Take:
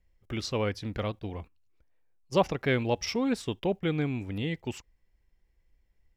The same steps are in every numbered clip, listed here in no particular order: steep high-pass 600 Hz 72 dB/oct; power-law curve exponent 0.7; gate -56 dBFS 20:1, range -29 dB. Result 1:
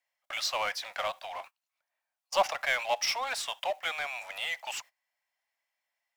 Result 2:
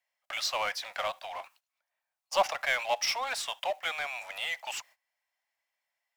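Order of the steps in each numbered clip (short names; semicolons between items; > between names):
steep high-pass > gate > power-law curve; gate > steep high-pass > power-law curve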